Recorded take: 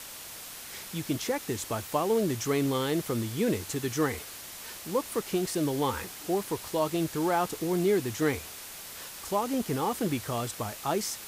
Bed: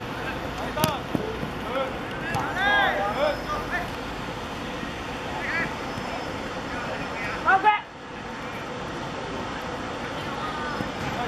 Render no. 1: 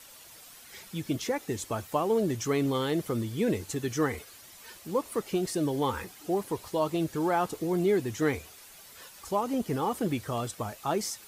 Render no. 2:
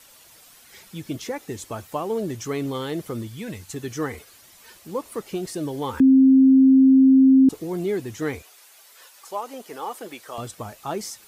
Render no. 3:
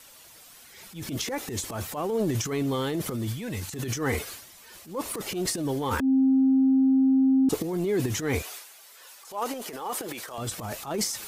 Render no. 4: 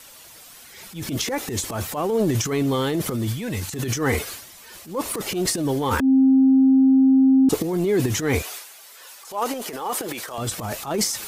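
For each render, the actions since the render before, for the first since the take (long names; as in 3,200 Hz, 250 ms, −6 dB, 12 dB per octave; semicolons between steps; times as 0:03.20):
broadband denoise 10 dB, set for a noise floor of −43 dBFS
0:03.27–0:03.74: parametric band 390 Hz −12.5 dB 1.3 octaves; 0:06.00–0:07.49: beep over 265 Hz −10 dBFS; 0:08.42–0:10.38: high-pass filter 510 Hz
brickwall limiter −17 dBFS, peak gain reduction 7 dB; transient designer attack −9 dB, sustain +11 dB
level +5.5 dB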